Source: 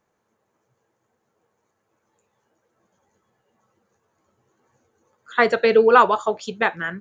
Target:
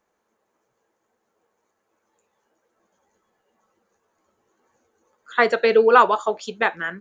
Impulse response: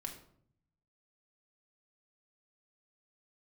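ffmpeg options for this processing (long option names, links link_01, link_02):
-af "equalizer=frequency=120:width=1.6:gain=-14.5"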